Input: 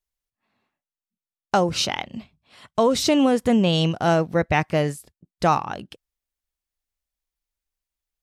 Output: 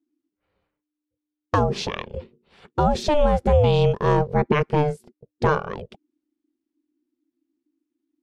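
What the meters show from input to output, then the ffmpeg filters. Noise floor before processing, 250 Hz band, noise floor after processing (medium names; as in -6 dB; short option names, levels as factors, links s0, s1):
under -85 dBFS, -5.0 dB, under -85 dBFS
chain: -af "aemphasis=mode=reproduction:type=bsi,aeval=exprs='val(0)*sin(2*PI*300*n/s)':c=same"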